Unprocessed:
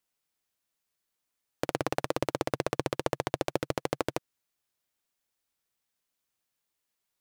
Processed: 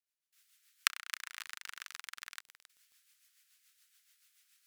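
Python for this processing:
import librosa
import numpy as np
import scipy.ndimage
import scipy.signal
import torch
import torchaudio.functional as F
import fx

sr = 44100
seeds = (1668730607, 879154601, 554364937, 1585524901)

y = fx.speed_glide(x, sr, from_pct=196, to_pct=113)
y = fx.recorder_agc(y, sr, target_db=-18.5, rise_db_per_s=55.0, max_gain_db=30)
y = scipy.signal.sosfilt(scipy.signal.butter(6, 1400.0, 'highpass', fs=sr, output='sos'), y)
y = fx.level_steps(y, sr, step_db=23)
y = fx.rotary(y, sr, hz=7.0)
y = fx.echo_crushed(y, sr, ms=269, feedback_pct=35, bits=7, wet_db=-11.0)
y = y * 10.0 ** (2.0 / 20.0)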